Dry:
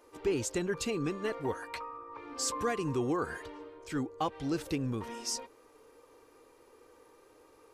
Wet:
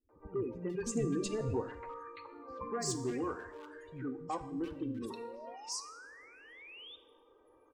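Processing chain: spectral gate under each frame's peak -20 dB strong; flange 0.43 Hz, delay 2.6 ms, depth 8.1 ms, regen -66%; hard clipper -30 dBFS, distortion -21 dB; 0.85–2.07 s: RIAA curve playback; 4.77–6.53 s: painted sound rise 270–3700 Hz -50 dBFS; three bands offset in time lows, mids, highs 90/430 ms, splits 200/1900 Hz; two-slope reverb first 0.86 s, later 2.8 s, from -27 dB, DRR 10.5 dB

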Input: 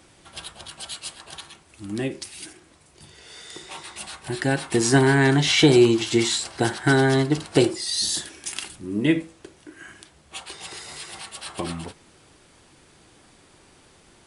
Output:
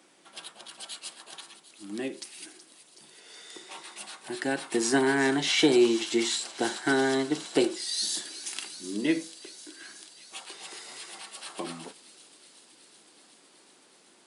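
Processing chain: high-pass 210 Hz 24 dB/octave; feedback echo behind a high-pass 373 ms, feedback 80%, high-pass 3.9 kHz, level -11.5 dB; trim -5.5 dB

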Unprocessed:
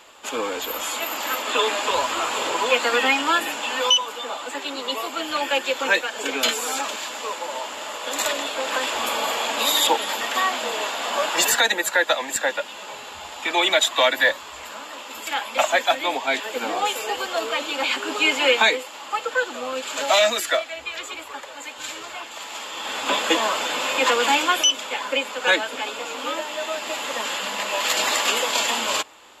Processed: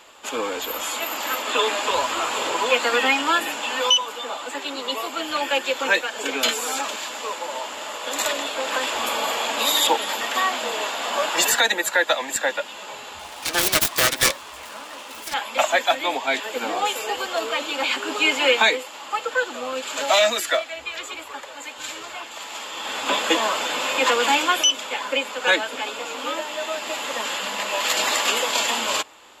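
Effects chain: 13.19–15.34 s: self-modulated delay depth 0.73 ms

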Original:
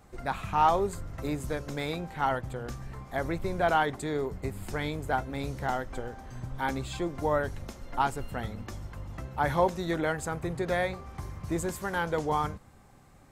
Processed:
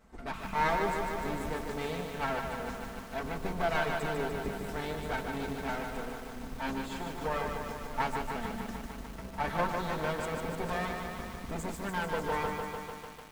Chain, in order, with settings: comb filter that takes the minimum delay 4.5 ms; treble shelf 4.9 kHz -6 dB; on a send at -21 dB: reverberation RT60 0.40 s, pre-delay 3 ms; on the sum: bit-crushed delay 149 ms, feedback 80%, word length 8-bit, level -4.5 dB; trim -3 dB

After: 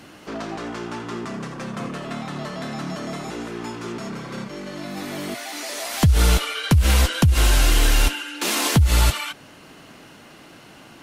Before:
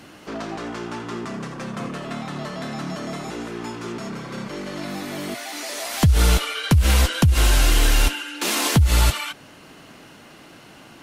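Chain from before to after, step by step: 4.44–4.97 s: harmonic-percussive split percussive -9 dB

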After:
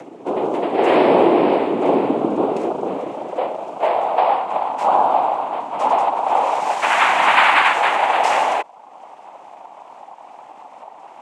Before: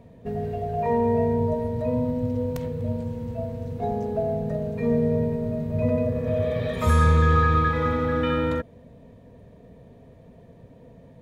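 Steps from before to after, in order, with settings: noise-vocoded speech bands 4; high-pass sweep 360 Hz -> 820 Hz, 2.40–4.42 s; upward compressor, threshold -38 dBFS; trim +6.5 dB

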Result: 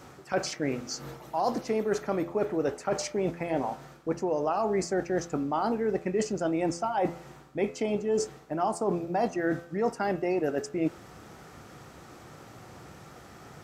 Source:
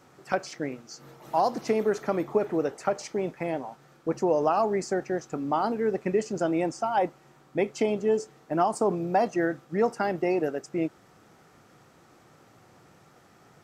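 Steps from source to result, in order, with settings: reverse; compression, threshold -33 dBFS, peak gain reduction 14 dB; reverse; peaking EQ 63 Hz +10 dB 0.83 oct; de-hum 85.26 Hz, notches 34; trim +8 dB

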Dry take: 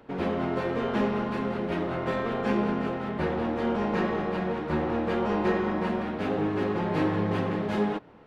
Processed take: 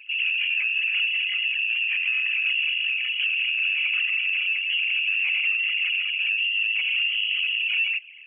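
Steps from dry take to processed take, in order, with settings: resonances exaggerated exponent 3; high-pass 67 Hz 24 dB/octave; peaking EQ 990 Hz +13 dB 3 oct; compression 3:1, threshold -21 dBFS, peak gain reduction 6 dB; saturation -14.5 dBFS, distortion -24 dB; frequency inversion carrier 3.1 kHz

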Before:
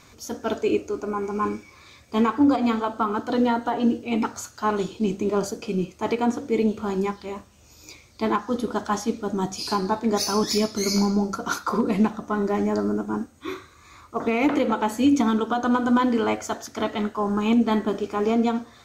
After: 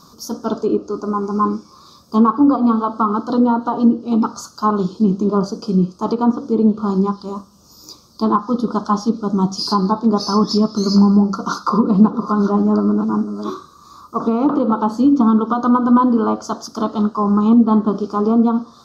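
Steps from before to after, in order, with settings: 11.44–13.50 s: chunks repeated in reverse 552 ms, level -10 dB; low-pass that closes with the level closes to 2.3 kHz, closed at -17.5 dBFS; FFT filter 110 Hz 0 dB, 180 Hz +15 dB, 280 Hz +8 dB, 740 Hz +4 dB, 1.2 kHz +14 dB, 2.1 kHz -23 dB, 3.2 kHz -2 dB, 5 kHz +14 dB, 7.4 kHz +2 dB, 13 kHz +13 dB; trim -2.5 dB

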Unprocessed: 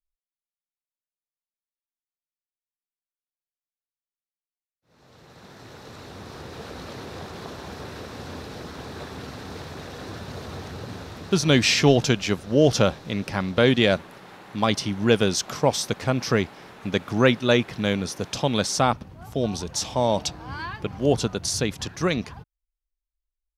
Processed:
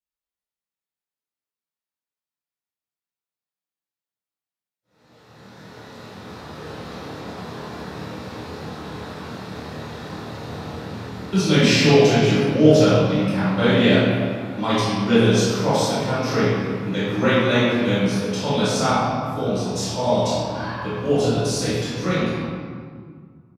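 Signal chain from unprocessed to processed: high-pass 99 Hz; doubling 26 ms -5.5 dB; reverberation RT60 1.9 s, pre-delay 3 ms, DRR -12.5 dB; trim -12.5 dB

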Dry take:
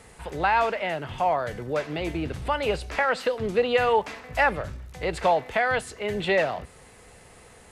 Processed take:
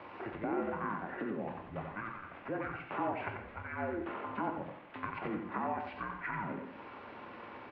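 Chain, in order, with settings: octave divider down 2 oct, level 0 dB; peak limiter -15.5 dBFS, peak gain reduction 5.5 dB; compression 12:1, threshold -37 dBFS, peak gain reduction 18 dB; word length cut 10-bit, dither none; pitch shift -8.5 st; delay 89 ms -6 dB; on a send at -6 dB: reverberation, pre-delay 3 ms; on the sum: mistuned SSB -200 Hz 480–2900 Hz; trim +6.5 dB

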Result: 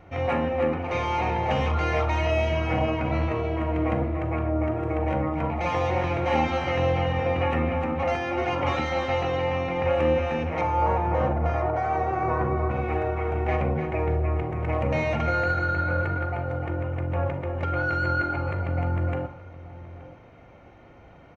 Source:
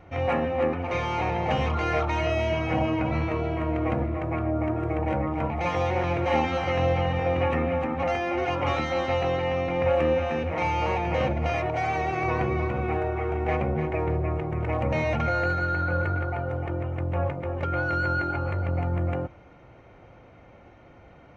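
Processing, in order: 10.61–12.71 s: resonant high shelf 1.9 kHz -10.5 dB, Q 1.5; echo from a far wall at 150 m, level -16 dB; reverberation RT60 0.35 s, pre-delay 36 ms, DRR 8.5 dB

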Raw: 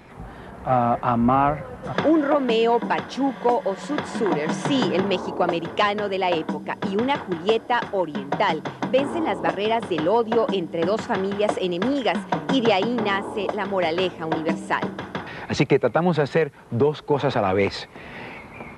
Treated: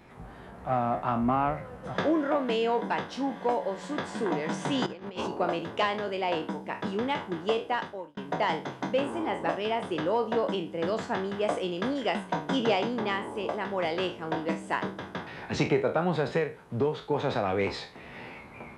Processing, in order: spectral sustain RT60 0.32 s; 4.86–5.31 s: compressor with a negative ratio -27 dBFS, ratio -0.5; 7.71–8.17 s: fade out; trim -8 dB

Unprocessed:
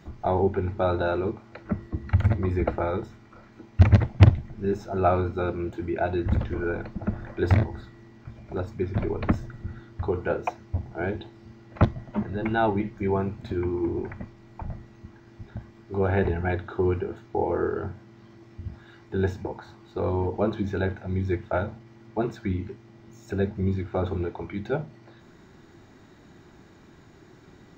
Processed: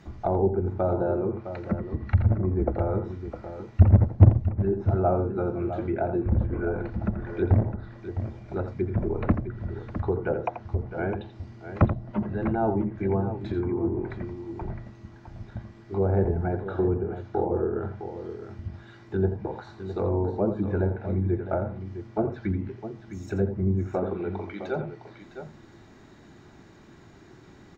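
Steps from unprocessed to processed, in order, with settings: 23.95–24.75 s: high-pass 160 Hz -> 390 Hz 12 dB/octave; low-pass that closes with the level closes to 750 Hz, closed at -22 dBFS; multi-tap echo 84/659 ms -10/-10.5 dB

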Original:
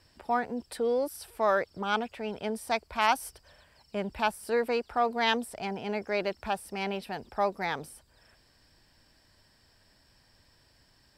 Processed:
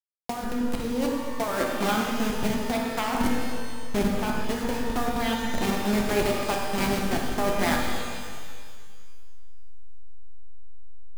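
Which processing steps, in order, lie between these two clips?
send-on-delta sampling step -27.5 dBFS; peaking EQ 240 Hz +14 dB 0.36 oct; de-hum 55.24 Hz, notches 32; compressor with a negative ratio -30 dBFS, ratio -1; pitch-shifted reverb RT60 1.8 s, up +12 st, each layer -8 dB, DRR 0.5 dB; trim +3.5 dB

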